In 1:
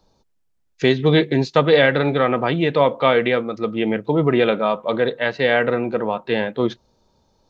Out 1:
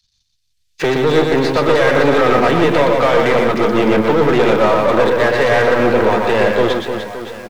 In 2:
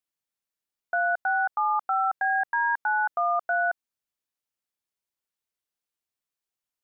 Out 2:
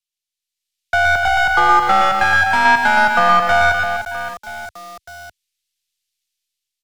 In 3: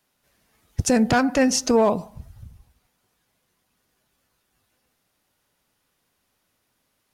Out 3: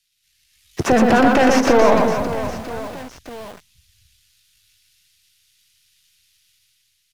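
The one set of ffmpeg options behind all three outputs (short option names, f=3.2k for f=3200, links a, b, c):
-filter_complex "[0:a]aeval=exprs='if(lt(val(0),0),0.251*val(0),val(0))':c=same,acrossover=split=120|2800[a][b][c];[a]acompressor=threshold=-36dB:ratio=4[d];[b]acompressor=threshold=-27dB:ratio=4[e];[c]acompressor=threshold=-45dB:ratio=4[f];[d][e][f]amix=inputs=3:normalize=0,asplit=2[g][h];[h]highpass=f=720:p=1,volume=27dB,asoftclip=type=tanh:threshold=-12dB[i];[g][i]amix=inputs=2:normalize=0,lowpass=f=1.6k:p=1,volume=-6dB,dynaudnorm=f=170:g=7:m=8dB,asplit=2[j][k];[k]aecho=0:1:120|300|570|975|1582:0.631|0.398|0.251|0.158|0.1[l];[j][l]amix=inputs=2:normalize=0,aresample=32000,aresample=44100,acrossover=split=100|2900[m][n][o];[n]aeval=exprs='val(0)*gte(abs(val(0)),0.02)':c=same[p];[m][p][o]amix=inputs=3:normalize=0,volume=-1dB"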